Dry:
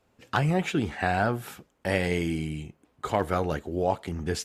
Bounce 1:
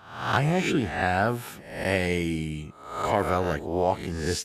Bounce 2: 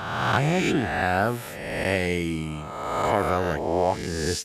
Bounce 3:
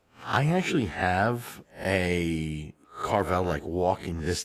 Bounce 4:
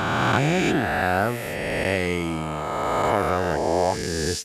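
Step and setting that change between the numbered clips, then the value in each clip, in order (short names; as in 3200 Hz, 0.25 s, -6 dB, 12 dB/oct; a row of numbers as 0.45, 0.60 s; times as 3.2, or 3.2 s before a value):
spectral swells, rising 60 dB in: 0.66, 1.51, 0.31, 3.17 s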